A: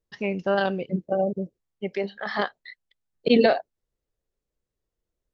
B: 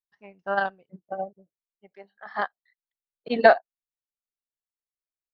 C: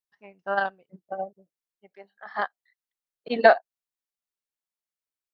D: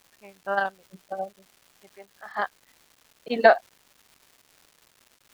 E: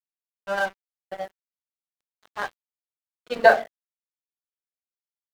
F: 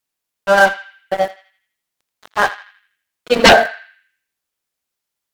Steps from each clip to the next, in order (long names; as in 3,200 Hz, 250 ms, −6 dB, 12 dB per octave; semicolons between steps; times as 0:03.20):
flat-topped bell 1,100 Hz +10.5 dB; expander for the loud parts 2.5 to 1, over −29 dBFS
low-shelf EQ 180 Hz −6 dB
surface crackle 490 per second −44 dBFS
convolution reverb RT60 0.40 s, pre-delay 5 ms, DRR 4 dB; dead-zone distortion −33 dBFS; level −1 dB
feedback echo with a band-pass in the loop 82 ms, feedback 47%, band-pass 2,500 Hz, level −13 dB; sine wavefolder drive 13 dB, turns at −1 dBFS; level −1 dB